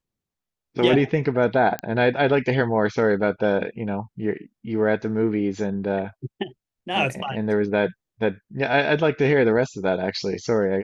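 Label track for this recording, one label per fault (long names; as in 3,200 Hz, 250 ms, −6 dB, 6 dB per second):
1.790000	1.790000	click −12 dBFS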